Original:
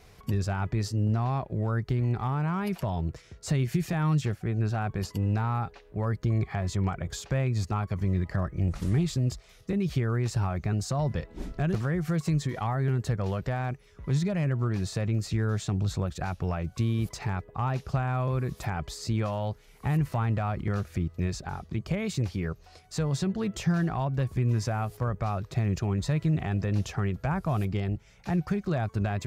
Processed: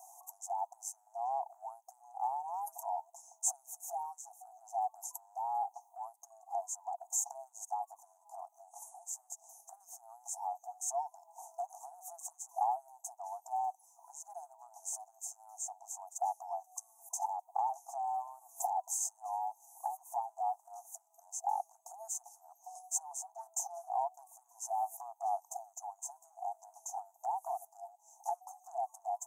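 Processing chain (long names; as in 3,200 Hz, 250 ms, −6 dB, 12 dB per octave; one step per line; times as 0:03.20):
Chebyshev band-stop filter 900–6,300 Hz, order 5
downward compressor 6 to 1, threshold −34 dBFS, peak gain reduction 12 dB
linear-phase brick-wall high-pass 670 Hz
level +10.5 dB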